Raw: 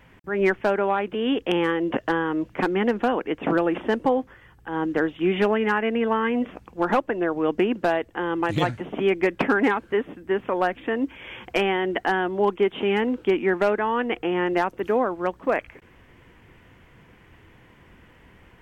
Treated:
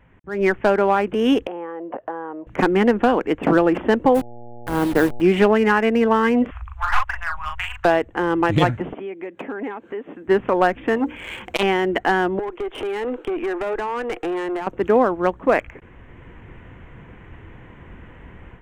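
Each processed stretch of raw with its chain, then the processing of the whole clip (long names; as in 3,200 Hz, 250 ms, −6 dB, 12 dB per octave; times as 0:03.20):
0:01.47–0:02.47: downward compressor 2.5 to 1, threshold −30 dBFS + resonant band-pass 710 Hz, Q 1.8
0:04.14–0:05.20: hold until the input has moved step −29 dBFS + hum with harmonics 120 Hz, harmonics 7, −47 dBFS 0 dB per octave
0:06.51–0:07.85: inverse Chebyshev band-stop filter 210–430 Hz, stop band 70 dB + low-shelf EQ 400 Hz +10.5 dB + double-tracking delay 39 ms −3 dB
0:08.93–0:10.28: high-pass filter 270 Hz + dynamic equaliser 1,400 Hz, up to −6 dB, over −36 dBFS, Q 1.2 + downward compressor 2.5 to 1, threshold −41 dBFS
0:10.96–0:11.63: high-shelf EQ 3,400 Hz +11.5 dB + mains-hum notches 60/120/180/240/300/360/420/480/540 Hz + saturating transformer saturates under 1,400 Hz
0:12.39–0:14.67: Butterworth high-pass 310 Hz + downward compressor 16 to 1, threshold −24 dBFS + tube saturation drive 28 dB, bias 0.35
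whole clip: adaptive Wiener filter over 9 samples; low-shelf EQ 91 Hz +6.5 dB; automatic gain control gain up to 11.5 dB; level −3 dB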